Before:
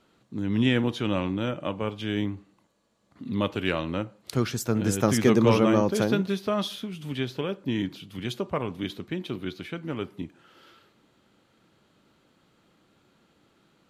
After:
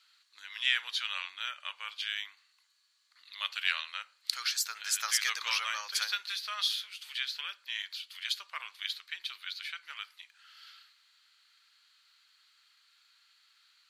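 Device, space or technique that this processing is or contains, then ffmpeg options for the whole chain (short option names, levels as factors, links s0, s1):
headphones lying on a table: -af "highpass=f=1500:w=0.5412,highpass=f=1500:w=1.3066,equalizer=f=4400:t=o:w=0.37:g=10.5,volume=1.19"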